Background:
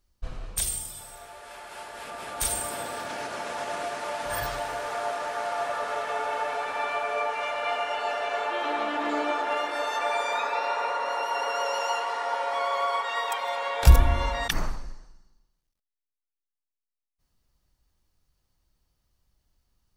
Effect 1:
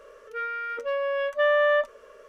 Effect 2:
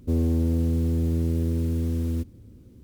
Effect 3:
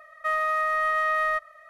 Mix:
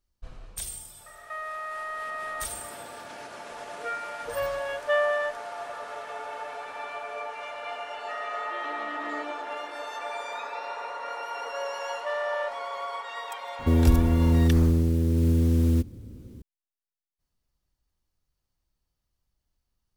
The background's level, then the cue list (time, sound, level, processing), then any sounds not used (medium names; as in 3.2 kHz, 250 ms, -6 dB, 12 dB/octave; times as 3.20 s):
background -7.5 dB
1.06 s: add 3 + compression 2.5:1, threshold -38 dBFS
3.50 s: add 1 -1 dB + reverb removal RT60 1.8 s
7.84 s: add 3 -11.5 dB + formants replaced by sine waves
10.67 s: add 1 -9.5 dB
13.59 s: add 2 -13.5 dB + loudness maximiser +18.5 dB